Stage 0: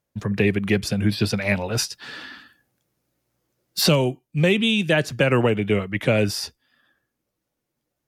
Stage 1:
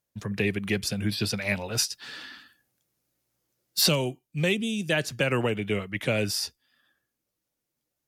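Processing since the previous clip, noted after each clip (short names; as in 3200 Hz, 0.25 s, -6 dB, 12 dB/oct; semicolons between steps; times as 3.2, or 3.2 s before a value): spectral gain 4.54–4.89, 780–4500 Hz -11 dB; high shelf 2700 Hz +8.5 dB; gain -7.5 dB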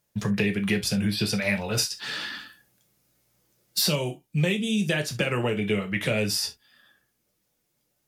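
compressor 3:1, threshold -34 dBFS, peak gain reduction 12 dB; non-linear reverb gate 90 ms falling, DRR 4 dB; gain +7.5 dB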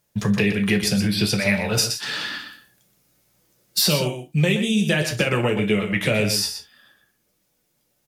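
echo 0.122 s -9 dB; gain +4.5 dB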